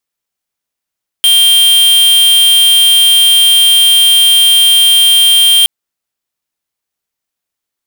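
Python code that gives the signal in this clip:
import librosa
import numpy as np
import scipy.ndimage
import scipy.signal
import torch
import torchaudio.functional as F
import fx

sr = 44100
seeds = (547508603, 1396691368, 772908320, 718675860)

y = fx.tone(sr, length_s=4.42, wave='square', hz=3180.0, level_db=-6.5)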